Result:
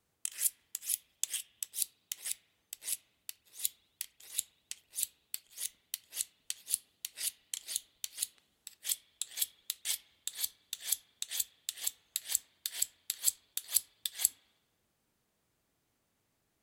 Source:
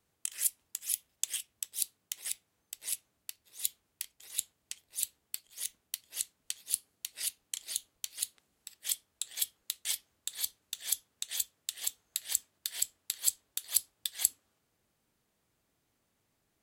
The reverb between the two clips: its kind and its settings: spring tank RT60 1.1 s, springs 33/59 ms, chirp 50 ms, DRR 17.5 dB; gain -1 dB

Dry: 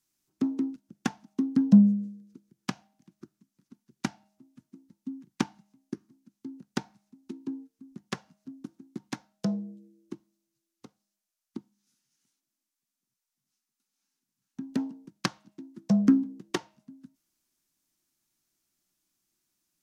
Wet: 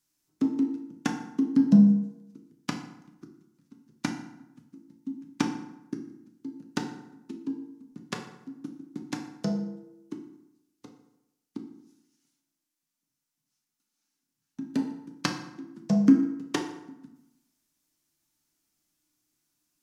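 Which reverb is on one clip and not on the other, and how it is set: FDN reverb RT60 0.9 s, low-frequency decay 1×, high-frequency decay 0.65×, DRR 2.5 dB

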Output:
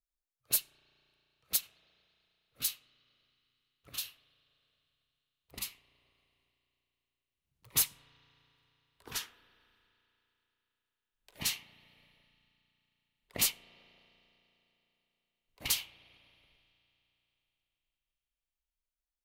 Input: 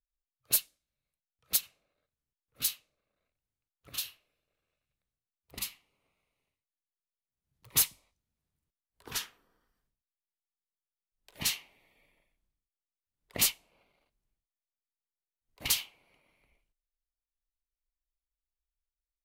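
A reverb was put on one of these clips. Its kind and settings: spring tank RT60 3.7 s, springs 34 ms, chirp 80 ms, DRR 17.5 dB; gain -2.5 dB

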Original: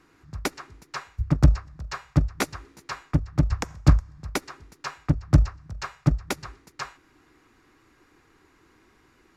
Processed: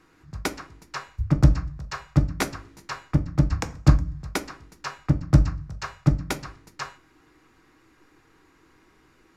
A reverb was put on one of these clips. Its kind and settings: shoebox room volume 150 m³, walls furnished, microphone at 0.6 m

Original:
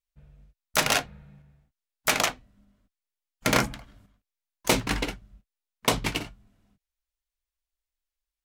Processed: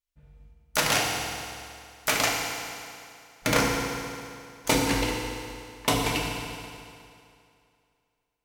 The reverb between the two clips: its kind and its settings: FDN reverb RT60 2.5 s, low-frequency decay 0.9×, high-frequency decay 0.9×, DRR -1.5 dB; gain -2.5 dB

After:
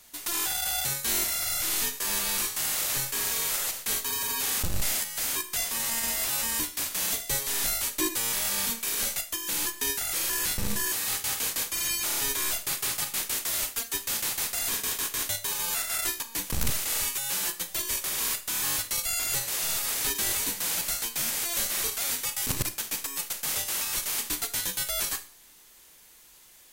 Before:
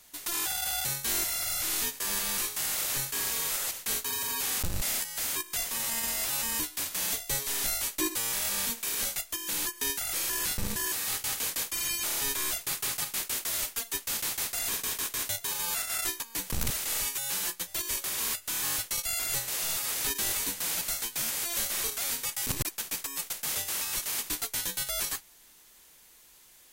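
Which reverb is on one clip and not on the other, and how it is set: Schroeder reverb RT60 0.39 s, combs from 27 ms, DRR 11 dB; gain +2 dB

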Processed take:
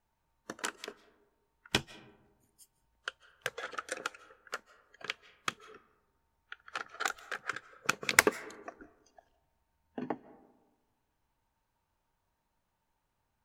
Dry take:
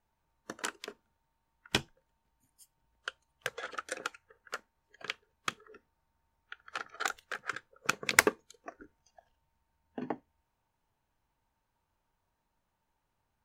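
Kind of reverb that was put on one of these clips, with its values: digital reverb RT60 1.2 s, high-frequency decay 0.35×, pre-delay 0.115 s, DRR 19 dB

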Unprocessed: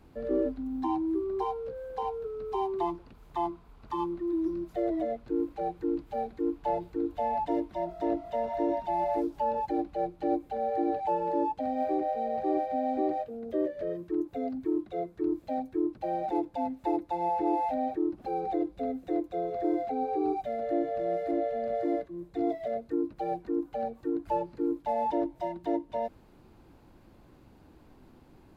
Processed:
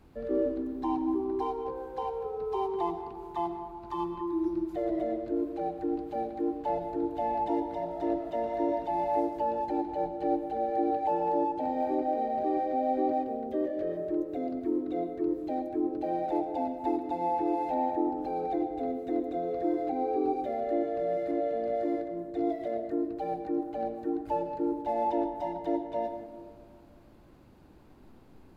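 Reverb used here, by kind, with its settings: digital reverb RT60 2 s, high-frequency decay 0.25×, pre-delay 75 ms, DRR 7 dB; gain -1 dB

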